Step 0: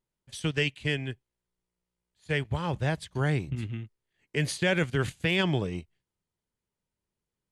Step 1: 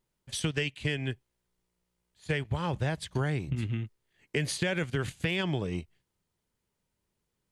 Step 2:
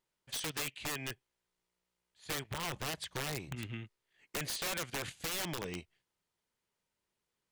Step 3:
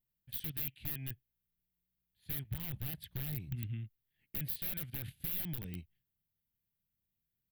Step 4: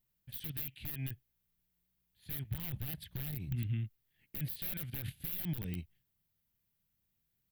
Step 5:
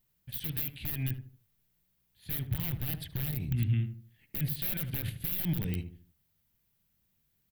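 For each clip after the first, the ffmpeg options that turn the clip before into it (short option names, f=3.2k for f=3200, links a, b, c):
-af "acompressor=threshold=-33dB:ratio=6,volume=6dB"
-filter_complex "[0:a]asplit=2[a][b];[b]highpass=f=720:p=1,volume=12dB,asoftclip=type=tanh:threshold=-14.5dB[c];[a][c]amix=inputs=2:normalize=0,lowpass=f=6.7k:p=1,volume=-6dB,aeval=exprs='(mod(13.3*val(0)+1,2)-1)/13.3':c=same,volume=-8dB"
-af "firequalizer=gain_entry='entry(120,0);entry(410,-20);entry(760,-21);entry(1100,-27);entry(1600,-18);entry(3600,-15);entry(6700,-29);entry(13000,3)':delay=0.05:min_phase=1,volume=5dB"
-af "alimiter=level_in=8.5dB:limit=-24dB:level=0:latency=1:release=43,volume=-8.5dB,volume=5.5dB"
-filter_complex "[0:a]asplit=2[a][b];[b]adelay=76,lowpass=f=1.1k:p=1,volume=-7.5dB,asplit=2[c][d];[d]adelay=76,lowpass=f=1.1k:p=1,volume=0.37,asplit=2[e][f];[f]adelay=76,lowpass=f=1.1k:p=1,volume=0.37,asplit=2[g][h];[h]adelay=76,lowpass=f=1.1k:p=1,volume=0.37[i];[a][c][e][g][i]amix=inputs=5:normalize=0,volume=6dB"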